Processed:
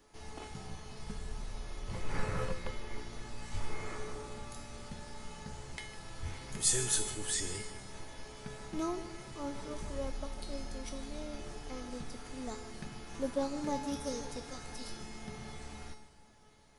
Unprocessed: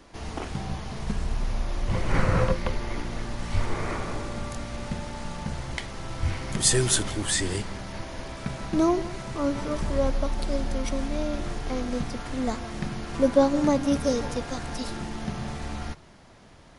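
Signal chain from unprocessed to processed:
high-shelf EQ 7,500 Hz +11.5 dB
tuned comb filter 430 Hz, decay 0.62 s, mix 90%
on a send: echo with a time of its own for lows and highs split 410 Hz, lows 282 ms, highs 153 ms, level −15.5 dB
on the sum: highs frequency-modulated by the lows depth 0.11 ms
level +4.5 dB

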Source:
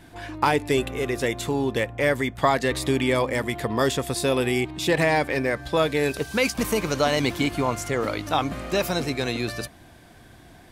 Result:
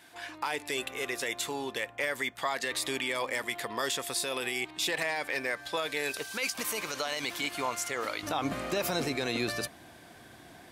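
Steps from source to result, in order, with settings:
high-pass filter 1,400 Hz 6 dB per octave, from 0:08.23 250 Hz
brickwall limiter −20 dBFS, peak gain reduction 10.5 dB

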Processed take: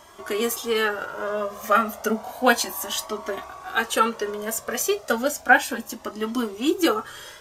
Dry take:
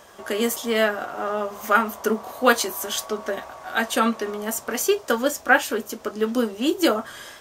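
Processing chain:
downsampling to 32,000 Hz
flanger whose copies keep moving one way rising 0.32 Hz
level +4 dB

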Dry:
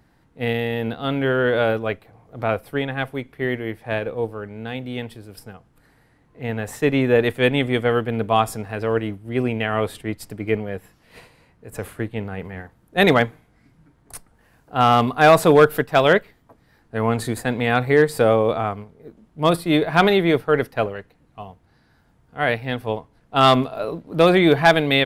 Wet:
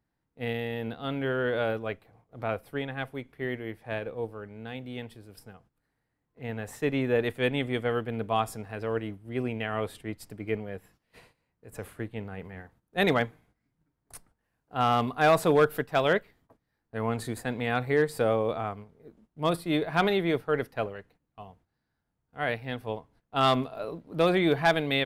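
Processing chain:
noise gate −50 dBFS, range −13 dB
level −9 dB

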